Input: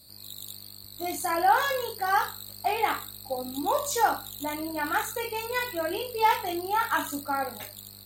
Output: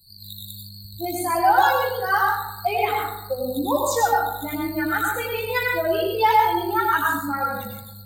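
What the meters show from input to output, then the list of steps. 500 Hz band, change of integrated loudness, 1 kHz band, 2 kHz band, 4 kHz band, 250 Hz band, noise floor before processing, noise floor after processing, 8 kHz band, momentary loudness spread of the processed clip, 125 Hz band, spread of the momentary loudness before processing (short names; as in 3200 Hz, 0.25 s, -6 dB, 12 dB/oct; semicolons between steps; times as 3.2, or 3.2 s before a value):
+7.0 dB, +6.0 dB, +6.0 dB, +6.5 dB, +3.0 dB, +7.5 dB, -47 dBFS, -41 dBFS, +2.0 dB, 16 LU, +12.0 dB, 15 LU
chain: per-bin expansion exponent 2; plate-style reverb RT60 0.75 s, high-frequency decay 0.35×, pre-delay 80 ms, DRR -1 dB; three-band squash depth 40%; gain +7 dB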